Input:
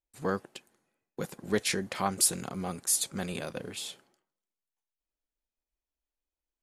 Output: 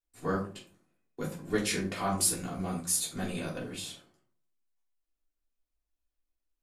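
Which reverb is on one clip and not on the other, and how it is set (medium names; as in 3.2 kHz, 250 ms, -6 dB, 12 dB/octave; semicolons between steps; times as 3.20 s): simulated room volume 210 m³, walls furnished, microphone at 3.3 m; trim -7 dB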